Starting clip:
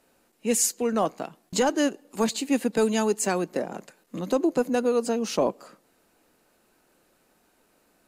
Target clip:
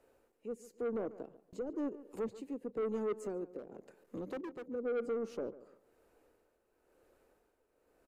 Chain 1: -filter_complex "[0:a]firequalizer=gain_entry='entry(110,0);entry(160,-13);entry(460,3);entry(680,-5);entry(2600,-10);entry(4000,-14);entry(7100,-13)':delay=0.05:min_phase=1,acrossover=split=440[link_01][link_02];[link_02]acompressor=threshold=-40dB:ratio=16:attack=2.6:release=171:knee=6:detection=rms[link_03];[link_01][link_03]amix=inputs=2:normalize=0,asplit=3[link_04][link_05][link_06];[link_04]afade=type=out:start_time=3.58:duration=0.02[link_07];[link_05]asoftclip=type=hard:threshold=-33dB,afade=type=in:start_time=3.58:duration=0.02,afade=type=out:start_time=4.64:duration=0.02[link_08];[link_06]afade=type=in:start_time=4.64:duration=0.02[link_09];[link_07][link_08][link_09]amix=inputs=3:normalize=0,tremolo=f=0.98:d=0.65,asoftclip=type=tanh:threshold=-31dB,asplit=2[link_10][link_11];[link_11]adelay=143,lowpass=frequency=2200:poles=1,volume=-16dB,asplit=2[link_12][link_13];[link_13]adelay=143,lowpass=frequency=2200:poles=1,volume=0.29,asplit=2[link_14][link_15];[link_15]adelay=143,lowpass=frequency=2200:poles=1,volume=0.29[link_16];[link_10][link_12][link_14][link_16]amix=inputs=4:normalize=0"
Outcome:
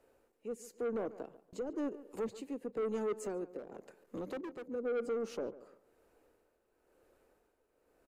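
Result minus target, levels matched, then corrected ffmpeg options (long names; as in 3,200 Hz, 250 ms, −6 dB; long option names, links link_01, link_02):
downward compressor: peak gain reduction −7 dB
-filter_complex "[0:a]firequalizer=gain_entry='entry(110,0);entry(160,-13);entry(460,3);entry(680,-5);entry(2600,-10);entry(4000,-14);entry(7100,-13)':delay=0.05:min_phase=1,acrossover=split=440[link_01][link_02];[link_02]acompressor=threshold=-47.5dB:ratio=16:attack=2.6:release=171:knee=6:detection=rms[link_03];[link_01][link_03]amix=inputs=2:normalize=0,asplit=3[link_04][link_05][link_06];[link_04]afade=type=out:start_time=3.58:duration=0.02[link_07];[link_05]asoftclip=type=hard:threshold=-33dB,afade=type=in:start_time=3.58:duration=0.02,afade=type=out:start_time=4.64:duration=0.02[link_08];[link_06]afade=type=in:start_time=4.64:duration=0.02[link_09];[link_07][link_08][link_09]amix=inputs=3:normalize=0,tremolo=f=0.98:d=0.65,asoftclip=type=tanh:threshold=-31dB,asplit=2[link_10][link_11];[link_11]adelay=143,lowpass=frequency=2200:poles=1,volume=-16dB,asplit=2[link_12][link_13];[link_13]adelay=143,lowpass=frequency=2200:poles=1,volume=0.29,asplit=2[link_14][link_15];[link_15]adelay=143,lowpass=frequency=2200:poles=1,volume=0.29[link_16];[link_10][link_12][link_14][link_16]amix=inputs=4:normalize=0"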